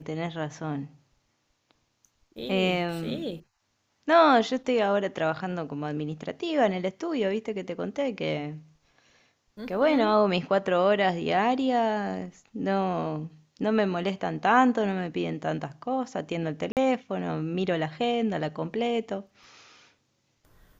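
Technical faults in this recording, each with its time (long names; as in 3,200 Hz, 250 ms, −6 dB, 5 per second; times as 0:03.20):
0:16.72–0:16.77: drop-out 48 ms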